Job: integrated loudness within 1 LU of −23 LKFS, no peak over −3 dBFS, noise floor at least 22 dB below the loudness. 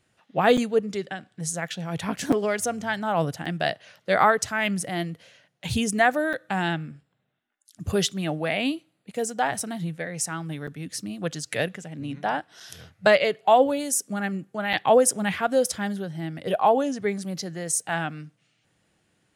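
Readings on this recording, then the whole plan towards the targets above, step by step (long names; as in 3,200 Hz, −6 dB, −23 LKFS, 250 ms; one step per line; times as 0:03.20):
number of dropouts 7; longest dropout 5.6 ms; integrated loudness −25.0 LKFS; sample peak −5.5 dBFS; target loudness −23.0 LKFS
→ repair the gap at 0:00.57/0:02.32/0:03.45/0:06.33/0:10.67/0:12.60/0:14.73, 5.6 ms
level +2 dB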